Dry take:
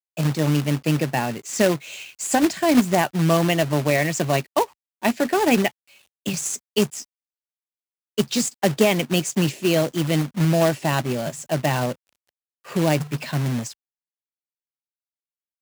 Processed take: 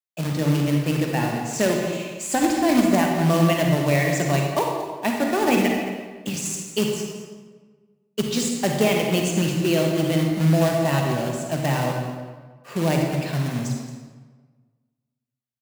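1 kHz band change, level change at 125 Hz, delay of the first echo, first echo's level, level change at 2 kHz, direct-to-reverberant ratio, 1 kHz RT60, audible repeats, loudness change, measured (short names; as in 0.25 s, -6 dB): -0.5 dB, +1.0 dB, 0.223 s, -13.5 dB, -1.0 dB, 0.5 dB, 1.4 s, 1, -0.5 dB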